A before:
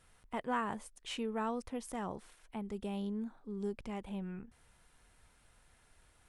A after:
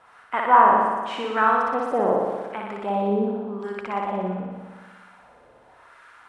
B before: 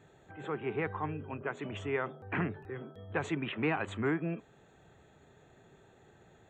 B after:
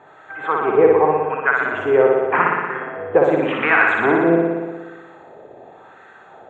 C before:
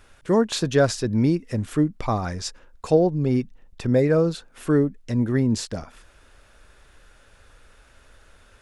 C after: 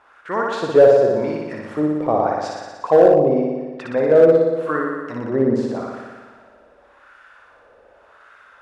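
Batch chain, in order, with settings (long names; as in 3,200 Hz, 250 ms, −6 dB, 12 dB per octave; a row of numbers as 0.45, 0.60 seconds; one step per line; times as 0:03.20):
LFO wah 0.87 Hz 500–1,500 Hz, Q 2.4
flutter between parallel walls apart 10.2 metres, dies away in 1.4 s
in parallel at −3 dB: hard clipping −18.5 dBFS
on the sum: normalise the peak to −1.5 dBFS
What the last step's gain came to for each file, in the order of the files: +18.5, +18.5, +6.0 decibels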